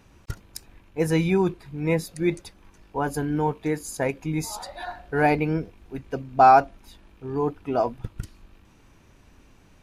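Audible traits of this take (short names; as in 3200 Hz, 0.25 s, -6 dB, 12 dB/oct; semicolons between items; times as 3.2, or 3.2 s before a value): noise floor -56 dBFS; spectral tilt -3.5 dB/oct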